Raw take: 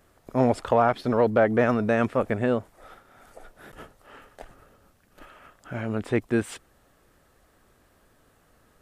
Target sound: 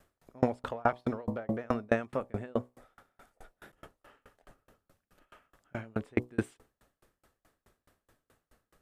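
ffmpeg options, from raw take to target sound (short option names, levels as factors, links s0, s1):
-af "bandreject=f=61.44:t=h:w=4,bandreject=f=122.88:t=h:w=4,bandreject=f=184.32:t=h:w=4,bandreject=f=245.76:t=h:w=4,bandreject=f=307.2:t=h:w=4,bandreject=f=368.64:t=h:w=4,bandreject=f=430.08:t=h:w=4,bandreject=f=491.52:t=h:w=4,bandreject=f=552.96:t=h:w=4,bandreject=f=614.4:t=h:w=4,bandreject=f=675.84:t=h:w=4,bandreject=f=737.28:t=h:w=4,bandreject=f=798.72:t=h:w=4,bandreject=f=860.16:t=h:w=4,bandreject=f=921.6:t=h:w=4,bandreject=f=983.04:t=h:w=4,bandreject=f=1044.48:t=h:w=4,bandreject=f=1105.92:t=h:w=4,bandreject=f=1167.36:t=h:w=4,aeval=exprs='val(0)*pow(10,-35*if(lt(mod(4.7*n/s,1),2*abs(4.7)/1000),1-mod(4.7*n/s,1)/(2*abs(4.7)/1000),(mod(4.7*n/s,1)-2*abs(4.7)/1000)/(1-2*abs(4.7)/1000))/20)':c=same"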